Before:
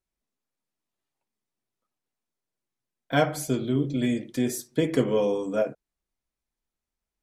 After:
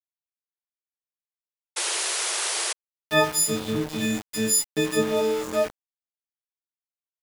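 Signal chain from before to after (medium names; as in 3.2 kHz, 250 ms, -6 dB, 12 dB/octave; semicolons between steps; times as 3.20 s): partials quantised in pitch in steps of 6 st; bass shelf 340 Hz -3 dB; doubling 36 ms -13.5 dB; small samples zeroed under -29.5 dBFS; painted sound noise, 1.76–2.73 s, 340–11000 Hz -27 dBFS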